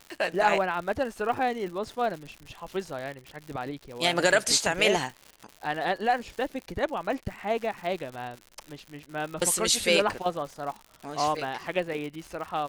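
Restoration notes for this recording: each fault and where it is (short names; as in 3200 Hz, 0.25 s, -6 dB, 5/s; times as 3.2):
crackle 130/s -35 dBFS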